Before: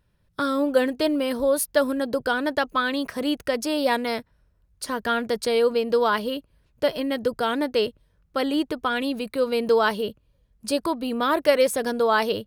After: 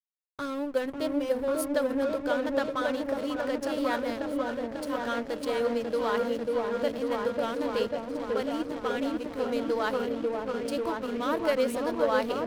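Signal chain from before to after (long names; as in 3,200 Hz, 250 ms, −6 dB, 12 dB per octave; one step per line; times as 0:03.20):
mains-hum notches 50/100/150/200/250/300/350/400/450 Hz
echo whose low-pass opens from repeat to repeat 544 ms, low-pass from 750 Hz, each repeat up 1 octave, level 0 dB
slack as between gear wheels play −25 dBFS
0:01.74–0:02.14: multiband upward and downward compressor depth 40%
level −8 dB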